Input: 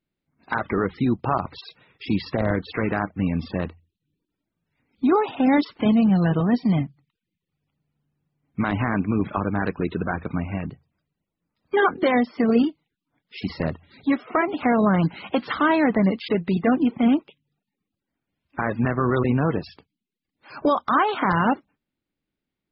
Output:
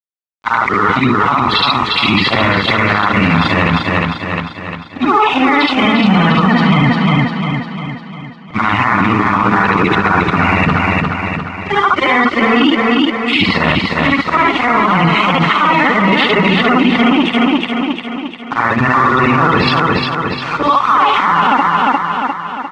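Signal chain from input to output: short-time spectra conjugated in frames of 154 ms; high-pass 49 Hz; high-order bell 1.9 kHz +15 dB 2.5 oct; band-stop 1.6 kHz, Q 5.8; reverse; compression 12:1, threshold -31 dBFS, peak gain reduction 24.5 dB; reverse; crossover distortion -51.5 dBFS; distance through air 120 m; feedback delay 351 ms, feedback 52%, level -5 dB; loudness maximiser +28.5 dB; trim -1 dB

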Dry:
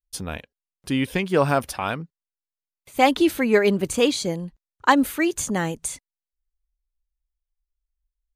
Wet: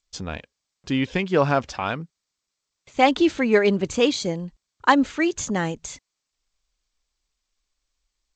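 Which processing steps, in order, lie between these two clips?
G.722 64 kbps 16 kHz

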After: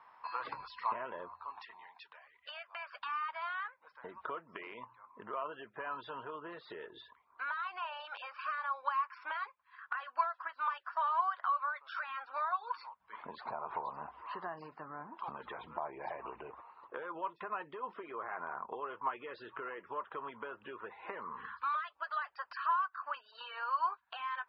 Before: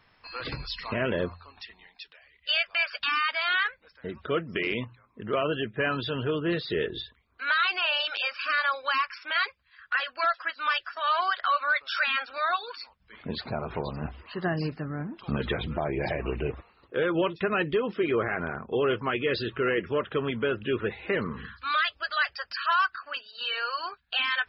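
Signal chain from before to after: compression 10:1, threshold -37 dBFS, peak gain reduction 16.5 dB; band-pass filter 980 Hz, Q 5.1; trim +13 dB

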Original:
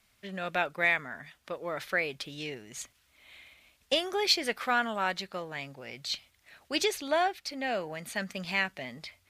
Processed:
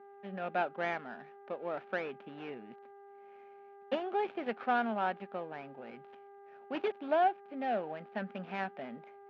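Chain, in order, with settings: dead-time distortion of 0.13 ms; mains buzz 400 Hz, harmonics 5, -53 dBFS -7 dB/octave; cabinet simulation 210–2500 Hz, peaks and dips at 220 Hz +8 dB, 780 Hz +6 dB, 1.1 kHz -5 dB, 2 kHz -8 dB; trim -2.5 dB

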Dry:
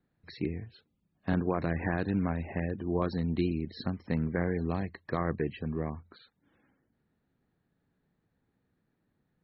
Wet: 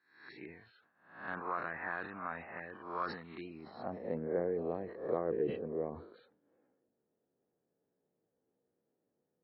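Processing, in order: reverse spectral sustain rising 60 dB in 0.55 s; band-pass sweep 1.3 kHz -> 490 Hz, 3.34–4.18 s; decay stretcher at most 81 dB/s; trim +1 dB

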